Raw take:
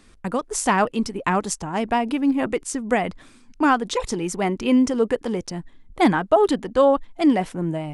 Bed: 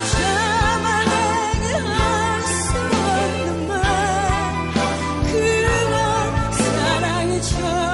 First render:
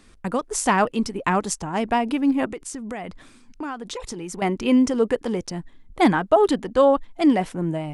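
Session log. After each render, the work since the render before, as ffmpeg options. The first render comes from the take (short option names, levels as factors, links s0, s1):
-filter_complex "[0:a]asettb=1/sr,asplit=3[s0][s1][s2];[s0]atrim=end=2.454[s3];[s1]atrim=start=2.45:end=4.42,asetpts=PTS-STARTPTS,afade=t=in:d=0.004:c=qsin,afade=t=out:st=1.966:d=0.004:c=qsin,acompressor=threshold=0.0316:ratio=4:attack=3.2:release=140:knee=1:detection=peak[s4];[s2]atrim=start=4.416[s5];[s3][s4]acrossfade=d=0.004:c1=hsin:c2=qsin[s6];[s6][s5]acrossfade=d=0.004:c1=qsin:c2=hsin"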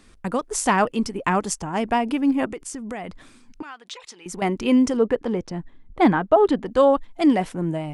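-filter_complex "[0:a]asettb=1/sr,asplit=3[s0][s1][s2];[s0]atrim=end=0.764[s3];[s1]atrim=start=0.76:end=2.87,asetpts=PTS-STARTPTS,afade=t=in:d=0.004:c=qsin,afade=t=out:st=2.106:d=0.004:c=qsin,bandreject=f=3900:w=12[s4];[s2]atrim=start=2.866[s5];[s3][s4]acrossfade=d=0.004:c1=hsin:c2=qsin[s6];[s6][s5]acrossfade=d=0.004:c1=qsin:c2=hsin,asettb=1/sr,asplit=3[s7][s8][s9];[s7]atrim=end=3.624[s10];[s8]atrim=start=3.62:end=4.26,asetpts=PTS-STARTPTS,afade=t=in:d=0.004:c=qsin,afade=t=out:st=0.636:d=0.004:c=qsin,bandpass=f=2900:t=q:w=0.79[s11];[s9]atrim=start=4.256[s12];[s10][s11]acrossfade=d=0.004:c1=hsin:c2=qsin[s13];[s13][s12]acrossfade=d=0.004:c1=qsin:c2=hsin,asettb=1/sr,asplit=3[s14][s15][s16];[s14]atrim=end=4.974[s17];[s15]atrim=start=4.97:end=6.66,asetpts=PTS-STARTPTS,afade=t=in:d=0.004:c=qsin,afade=t=out:st=1.686:d=0.004:c=qsin,aemphasis=mode=reproduction:type=75fm[s18];[s16]atrim=start=6.656[s19];[s17][s18]acrossfade=d=0.004:c1=hsin:c2=qsin[s20];[s20][s19]acrossfade=d=0.004:c1=qsin:c2=hsin"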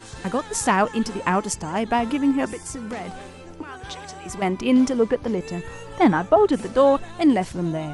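-filter_complex "[1:a]volume=0.1[s0];[0:a][s0]amix=inputs=2:normalize=0"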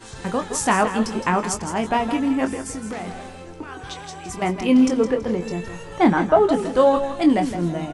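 -filter_complex "[0:a]asplit=2[s0][s1];[s1]adelay=23,volume=0.398[s2];[s0][s2]amix=inputs=2:normalize=0,asplit=2[s3][s4];[s4]aecho=0:1:164|328|492:0.316|0.0885|0.0248[s5];[s3][s5]amix=inputs=2:normalize=0"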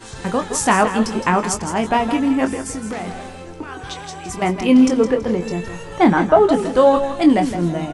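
-af "volume=1.5,alimiter=limit=0.794:level=0:latency=1"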